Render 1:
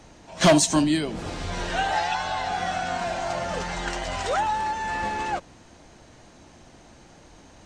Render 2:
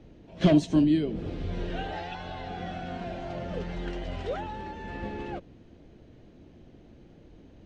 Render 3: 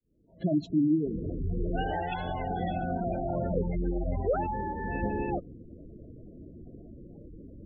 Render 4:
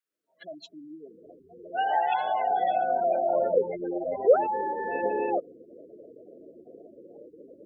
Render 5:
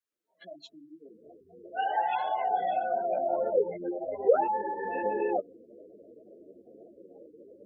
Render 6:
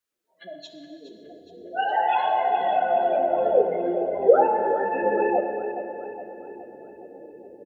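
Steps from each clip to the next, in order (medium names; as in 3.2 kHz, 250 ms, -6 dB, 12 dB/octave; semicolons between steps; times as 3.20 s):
FFT filter 430 Hz 0 dB, 920 Hz -16 dB, 3.2 kHz -10 dB, 8.1 kHz -28 dB
fade-in on the opening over 2.16 s; spectral gate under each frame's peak -15 dB strong; trim +5.5 dB
high-pass sweep 1.4 kHz -> 490 Hz, 0.16–3.68 s; trim +2.5 dB
three-phase chorus
on a send: feedback delay 417 ms, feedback 54%, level -12 dB; on the sum: plate-style reverb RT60 2.5 s, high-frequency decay 0.95×, DRR 5 dB; trim +6 dB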